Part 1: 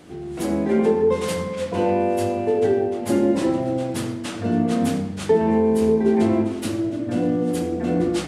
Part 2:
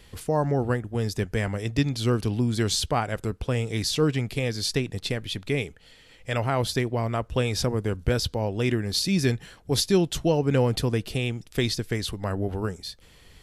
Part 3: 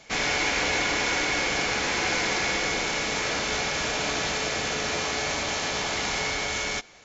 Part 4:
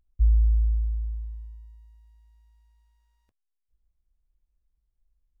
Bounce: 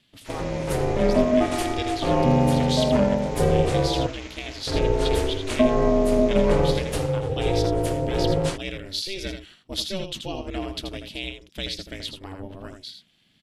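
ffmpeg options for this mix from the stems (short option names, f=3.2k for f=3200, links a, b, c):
-filter_complex "[0:a]acompressor=mode=upward:threshold=-22dB:ratio=2.5,adelay=300,volume=2dB,asplit=3[a][b][c];[a]atrim=end=4.07,asetpts=PTS-STARTPTS,afade=t=out:st=4.066:d=0.004:c=hsin[d];[b]atrim=start=4.07:end=4.67,asetpts=PTS-STARTPTS,volume=0[e];[c]atrim=start=4.67,asetpts=PTS-STARTPTS,afade=t=in:d=0.004:c=hsin[f];[d][e][f]concat=n=3:v=0:a=1[g];[1:a]equalizer=f=3.3k:t=o:w=1.1:g=12,agate=range=-7dB:threshold=-41dB:ratio=16:detection=peak,volume=-7.5dB,asplit=2[h][i];[i]volume=-7dB[j];[2:a]adelay=150,volume=-14.5dB[k];[3:a]adelay=2050,volume=0dB[l];[j]aecho=0:1:81:1[m];[g][h][k][l][m]amix=inputs=5:normalize=0,aeval=exprs='val(0)*sin(2*PI*190*n/s)':c=same"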